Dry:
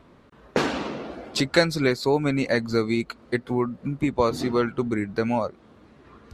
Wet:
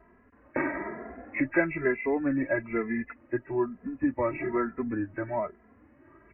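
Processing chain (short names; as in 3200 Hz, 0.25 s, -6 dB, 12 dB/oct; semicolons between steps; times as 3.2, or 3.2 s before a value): nonlinear frequency compression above 1600 Hz 4:1; comb 3.1 ms, depth 50%; endless flanger 2.6 ms +1.1 Hz; gain -4 dB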